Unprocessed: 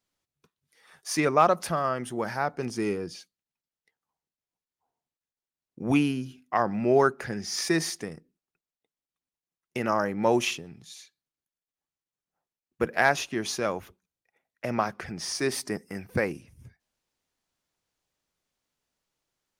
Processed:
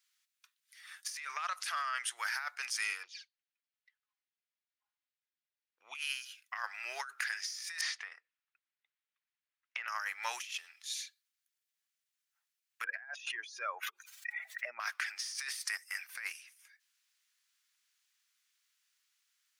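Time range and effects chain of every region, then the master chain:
1.35–2.17 LPF 11000 Hz + compressor 5:1, threshold -23 dBFS
3.03–5.95 envelope flanger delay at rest 4.9 ms, full sweep at -35.5 dBFS + air absorption 190 m
7.81–9.88 LPF 2700 Hz + bell 620 Hz +6 dB 1.5 oct + compressor, threshold -31 dBFS
12.84–14.8 spectral contrast raised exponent 2 + dynamic EQ 550 Hz, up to +5 dB, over -34 dBFS, Q 0.75 + fast leveller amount 50%
whole clip: HPF 1500 Hz 24 dB/oct; negative-ratio compressor -41 dBFS, ratio -1; gain +1 dB

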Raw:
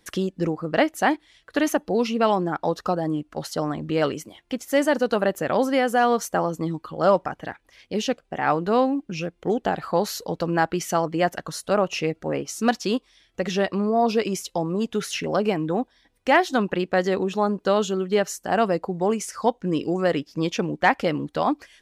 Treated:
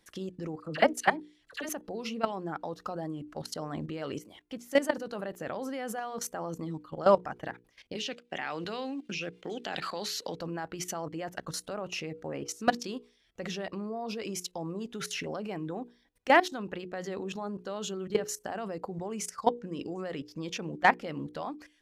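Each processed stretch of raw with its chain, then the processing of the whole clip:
0.6–1.69 LPF 11000 Hz + high shelf 3600 Hz +4.5 dB + dispersion lows, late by 49 ms, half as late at 1200 Hz
7.95–10.36 weighting filter D + three-band squash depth 40%
whole clip: level quantiser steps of 17 dB; notches 60/120/180/240/300/360/420/480 Hz; gain -1.5 dB

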